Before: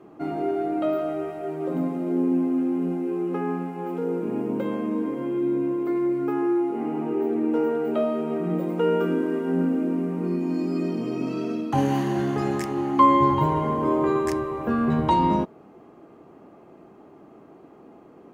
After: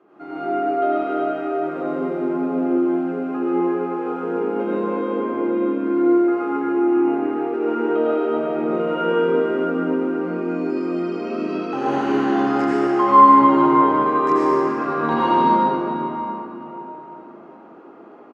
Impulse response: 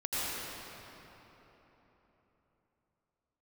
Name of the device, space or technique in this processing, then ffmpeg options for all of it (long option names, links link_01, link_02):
station announcement: -filter_complex "[0:a]highpass=300,lowpass=4800,equalizer=frequency=1400:width_type=o:width=0.32:gain=8,aecho=1:1:116.6|148.7:0.282|0.316[link_01];[1:a]atrim=start_sample=2205[link_02];[link_01][link_02]afir=irnorm=-1:irlink=0,volume=-3dB"